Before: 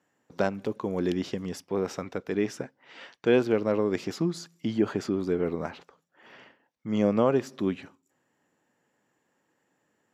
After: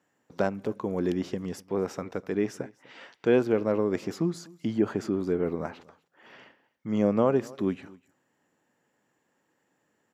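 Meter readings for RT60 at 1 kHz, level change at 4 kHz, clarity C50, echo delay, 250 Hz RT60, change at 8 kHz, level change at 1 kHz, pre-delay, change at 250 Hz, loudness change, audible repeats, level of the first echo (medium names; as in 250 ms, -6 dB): no reverb, -5.0 dB, no reverb, 248 ms, no reverb, -2.5 dB, -0.5 dB, no reverb, 0.0 dB, 0.0 dB, 1, -23.0 dB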